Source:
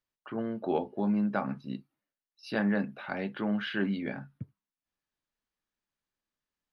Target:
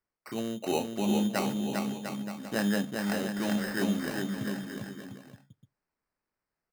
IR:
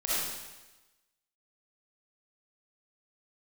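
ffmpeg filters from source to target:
-filter_complex "[0:a]acrossover=split=2700[a][b];[b]acompressor=threshold=-56dB:ratio=4:attack=1:release=60[c];[a][c]amix=inputs=2:normalize=0,acrusher=samples=13:mix=1:aa=0.000001,asplit=2[d][e];[e]aecho=0:1:400|700|925|1094|1220:0.631|0.398|0.251|0.158|0.1[f];[d][f]amix=inputs=2:normalize=0"

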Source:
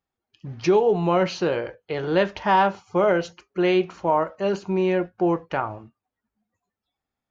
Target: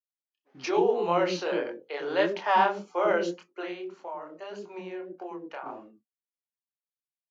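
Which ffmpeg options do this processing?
-filter_complex "[0:a]acrossover=split=410[a][b];[a]adelay=100[c];[c][b]amix=inputs=2:normalize=0,asettb=1/sr,asplit=3[d][e][f];[d]atrim=end=3.624[g];[e]atrim=start=3.62:end=5.66,asetpts=PTS-STARTPTS,afade=t=in:d=0.004:c=qsin,afade=t=out:st=2.036:d=0.004:c=qsin,acompressor=threshold=-33dB:ratio=6[h];[f]atrim=start=5.656[i];[g][h]acrossfade=d=0.004:c1=hsin:c2=qsin[j];[j][i]acrossfade=d=0.004:c1=qsin:c2=hsin,highpass=f=240:w=0.5412,highpass=f=240:w=1.3066,agate=range=-33dB:threshold=-45dB:ratio=3:detection=peak,flanger=delay=22.5:depth=7.5:speed=1.7"

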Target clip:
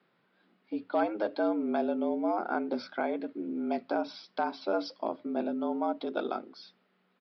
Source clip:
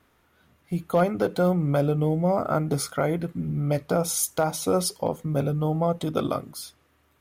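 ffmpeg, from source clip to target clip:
-af "afreqshift=110,aresample=11025,aresample=44100,volume=-7dB"

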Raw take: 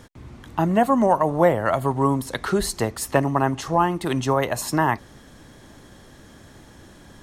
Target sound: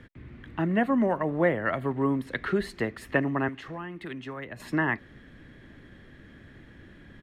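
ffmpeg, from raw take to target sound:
-filter_complex "[0:a]acrossover=split=160[a][b];[a]acompressor=threshold=-41dB:ratio=6[c];[b]firequalizer=gain_entry='entry(290,0);entry(860,-11);entry(1800,4);entry(5900,-20)':delay=0.05:min_phase=1[d];[c][d]amix=inputs=2:normalize=0,asettb=1/sr,asplit=3[e][f][g];[e]atrim=end=3.484[h];[f]atrim=start=3.48:end=4.6,asetpts=PTS-STARTPTS,afade=t=in:d=0.004:c=qsin,afade=t=out:st=1.116:d=0.004:c=qsin,acrossover=split=290|1200[i][j][k];[i]acompressor=threshold=-40dB:ratio=4[l];[j]acompressor=threshold=-41dB:ratio=4[m];[k]acompressor=threshold=-40dB:ratio=4[n];[l][m][n]amix=inputs=3:normalize=0[o];[g]atrim=start=4.596[p];[h][o]acrossfade=d=0.004:c1=hsin:c2=qsin[q];[q][p]acrossfade=d=0.004:c1=qsin:c2=hsin,volume=-2.5dB"

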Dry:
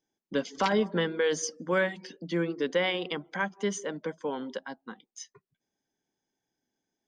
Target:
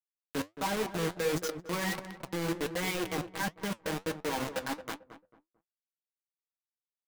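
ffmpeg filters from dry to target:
-filter_complex "[0:a]lowpass=2.2k,lowshelf=f=96:g=4.5,aecho=1:1:6.3:0.76,areverse,acompressor=threshold=-35dB:ratio=5,areverse,acrusher=bits=5:mix=0:aa=0.000001,flanger=delay=4.9:depth=7.6:regen=67:speed=1.4:shape=triangular,asplit=2[a][b];[b]adelay=222,lowpass=f=1.2k:p=1,volume=-10dB,asplit=2[c][d];[d]adelay=222,lowpass=f=1.2k:p=1,volume=0.3,asplit=2[e][f];[f]adelay=222,lowpass=f=1.2k:p=1,volume=0.3[g];[c][e][g]amix=inputs=3:normalize=0[h];[a][h]amix=inputs=2:normalize=0,volume=7dB"

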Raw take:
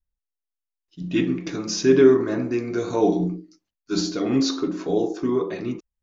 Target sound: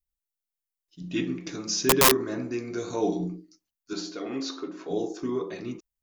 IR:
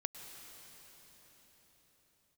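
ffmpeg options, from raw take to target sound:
-filter_complex "[0:a]aeval=exprs='(mod(2.51*val(0)+1,2)-1)/2.51':c=same,crystalizer=i=2:c=0,asettb=1/sr,asplit=3[a][b][c];[a]atrim=end=3.934[d];[b]atrim=start=3.93:end=4.91,asetpts=PTS-STARTPTS,afade=t=in:d=0.004:c=qsin,afade=t=out:st=0.976:d=0.004:c=qsin,bass=f=250:g=-13,treble=f=4k:g=-11[e];[c]atrim=start=4.906[f];[d][e]acrossfade=d=0.004:c1=hsin:c2=qsin[g];[g][f]acrossfade=d=0.004:c1=qsin:c2=hsin,volume=-7dB"

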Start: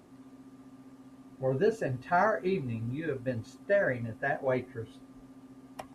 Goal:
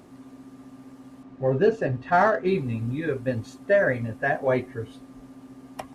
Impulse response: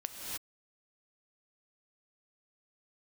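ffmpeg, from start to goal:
-filter_complex "[0:a]asettb=1/sr,asplit=3[a][b][c];[a]atrim=end=1.234[d];[b]atrim=start=1.23:end=2.48,asetpts=PTS-STARTPTS,afade=t=in:d=0.004:c=qsin,afade=t=out:st=1.246:d=0.004:c=qsin,adynamicsmooth=sensitivity=5.5:basefreq=4.3k[e];[c]atrim=start=2.476[f];[d][e]acrossfade=d=0.004:c1=hsin:c2=qsin[g];[g][f]acrossfade=d=0.004:c1=qsin:c2=hsin,volume=6.5dB"

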